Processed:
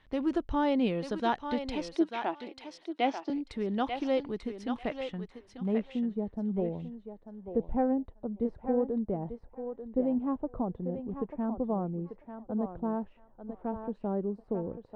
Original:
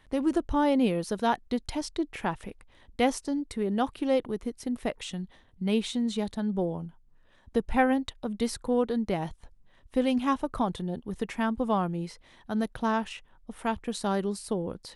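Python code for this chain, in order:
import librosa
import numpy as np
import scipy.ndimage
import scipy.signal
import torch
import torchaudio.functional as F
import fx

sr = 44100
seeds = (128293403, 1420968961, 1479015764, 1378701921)

y = fx.cabinet(x, sr, low_hz=290.0, low_slope=24, high_hz=5300.0, hz=(320.0, 470.0, 680.0, 1100.0, 1700.0, 4100.0), db=(9, -7, 7, -4, -6, -4), at=(1.95, 3.3))
y = fx.filter_sweep_lowpass(y, sr, from_hz=4000.0, to_hz=580.0, start_s=4.6, end_s=6.04, q=0.97)
y = fx.echo_thinned(y, sr, ms=891, feedback_pct=18, hz=520.0, wet_db=-5.5)
y = y * librosa.db_to_amplitude(-3.5)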